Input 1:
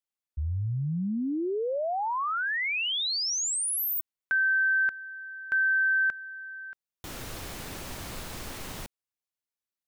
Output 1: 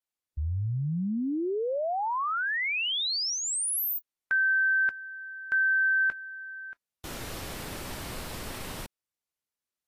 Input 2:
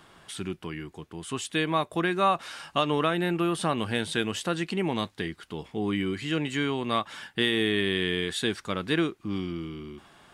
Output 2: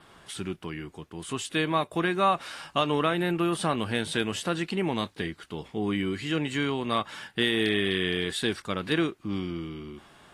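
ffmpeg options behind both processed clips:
-af "adynamicequalizer=threshold=0.00178:dfrequency=6500:dqfactor=4.7:tfrequency=6500:tqfactor=4.7:attack=5:release=100:ratio=0.375:range=2:mode=cutabove:tftype=bell" -ar 32000 -c:a aac -b:a 48k

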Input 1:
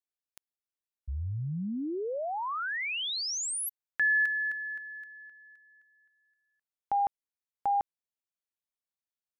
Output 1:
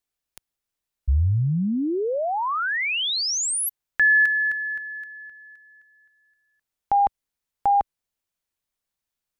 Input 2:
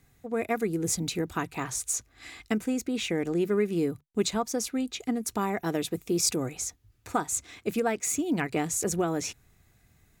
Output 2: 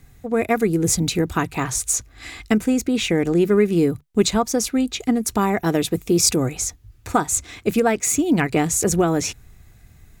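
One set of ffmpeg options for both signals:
-af "lowshelf=f=85:g=11.5,volume=8.5dB"

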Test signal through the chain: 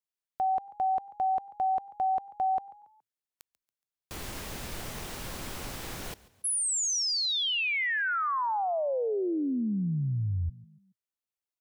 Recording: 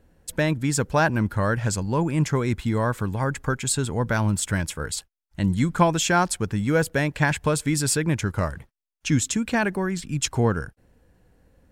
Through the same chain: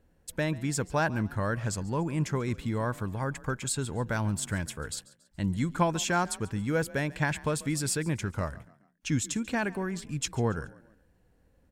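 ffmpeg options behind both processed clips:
-filter_complex "[0:a]asplit=4[a][b][c][d];[b]adelay=140,afreqshift=35,volume=-20.5dB[e];[c]adelay=280,afreqshift=70,volume=-28.2dB[f];[d]adelay=420,afreqshift=105,volume=-36dB[g];[a][e][f][g]amix=inputs=4:normalize=0,volume=-7dB"

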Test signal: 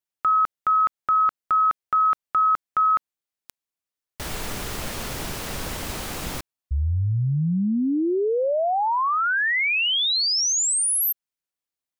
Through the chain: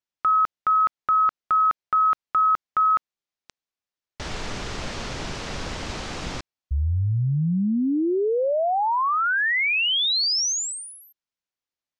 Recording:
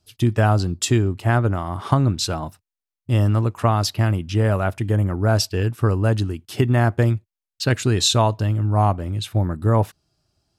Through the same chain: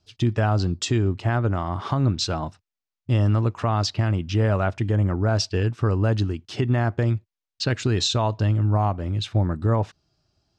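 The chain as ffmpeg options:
-af "lowpass=f=6.5k:w=0.5412,lowpass=f=6.5k:w=1.3066,alimiter=limit=-13dB:level=0:latency=1:release=163"

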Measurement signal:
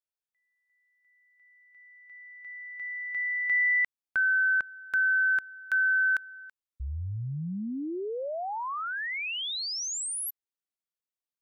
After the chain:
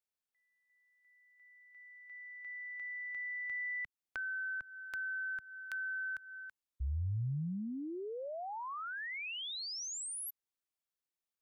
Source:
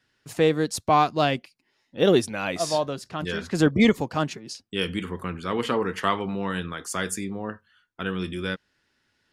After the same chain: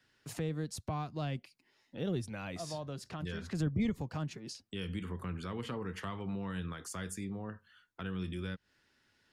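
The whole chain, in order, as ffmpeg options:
-filter_complex "[0:a]acrossover=split=150[a][b];[b]acompressor=threshold=-41dB:ratio=3:attack=2.5:release=254:knee=2.83:detection=peak[c];[a][c]amix=inputs=2:normalize=0,volume=-1.5dB"

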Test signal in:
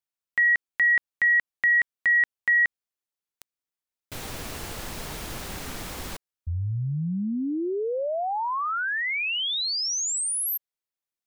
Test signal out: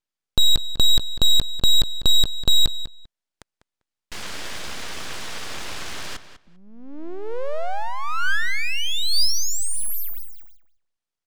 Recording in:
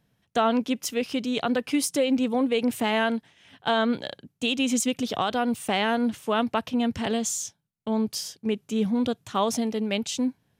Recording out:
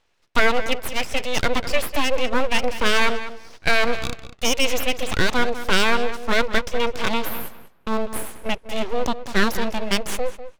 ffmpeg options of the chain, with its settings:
-filter_complex "[0:a]highpass=f=190:w=0.5412,highpass=f=190:w=1.3066,equalizer=f=200:t=q:w=4:g=-4,equalizer=f=510:t=q:w=4:g=-4,equalizer=f=780:t=q:w=4:g=6,equalizer=f=2.4k:t=q:w=4:g=8,lowpass=f=6.5k:w=0.5412,lowpass=f=6.5k:w=1.3066,aeval=exprs='abs(val(0))':c=same,asplit=2[a][b];[b]adelay=198,lowpass=f=4.6k:p=1,volume=-12dB,asplit=2[c][d];[d]adelay=198,lowpass=f=4.6k:p=1,volume=0.17[e];[a][c][e]amix=inputs=3:normalize=0,volume=6.5dB"

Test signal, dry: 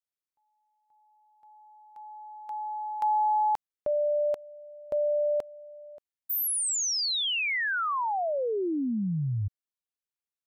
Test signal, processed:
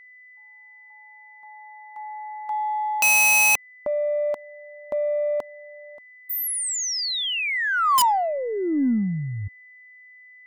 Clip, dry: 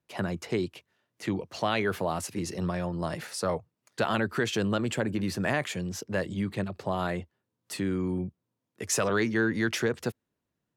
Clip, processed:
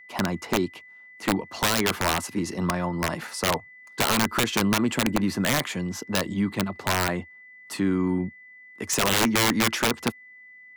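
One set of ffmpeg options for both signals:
-af "equalizer=f=125:t=o:w=1:g=-4,equalizer=f=250:t=o:w=1:g=8,equalizer=f=500:t=o:w=1:g=-4,equalizer=f=1k:t=o:w=1:g=10,aeval=exprs='(mod(6.31*val(0)+1,2)-1)/6.31':c=same,aeval=exprs='0.158*(cos(1*acos(clip(val(0)/0.158,-1,1)))-cos(1*PI/2))+0.002*(cos(3*acos(clip(val(0)/0.158,-1,1)))-cos(3*PI/2))+0.00282*(cos(6*acos(clip(val(0)/0.158,-1,1)))-cos(6*PI/2))+0.00251*(cos(8*acos(clip(val(0)/0.158,-1,1)))-cos(8*PI/2))':c=same,aeval=exprs='val(0)+0.00398*sin(2*PI*2000*n/s)':c=same,volume=2dB"

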